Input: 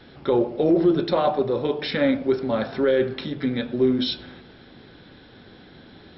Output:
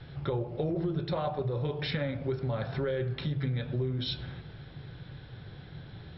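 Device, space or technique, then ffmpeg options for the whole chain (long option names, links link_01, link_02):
jukebox: -af "lowpass=5000,lowshelf=frequency=180:width_type=q:width=3:gain=8.5,acompressor=threshold=-25dB:ratio=5,volume=-3.5dB"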